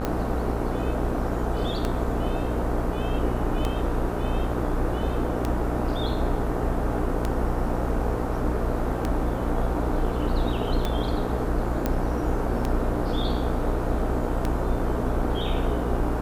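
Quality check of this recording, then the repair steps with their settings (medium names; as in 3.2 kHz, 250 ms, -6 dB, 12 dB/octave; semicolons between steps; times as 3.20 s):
buzz 60 Hz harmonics 26 -29 dBFS
tick 33 1/3 rpm -12 dBFS
11.86 s: pop -11 dBFS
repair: de-click; de-hum 60 Hz, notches 26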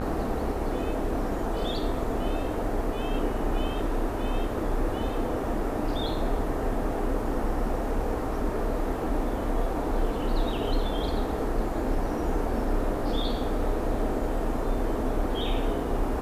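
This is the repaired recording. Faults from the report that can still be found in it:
nothing left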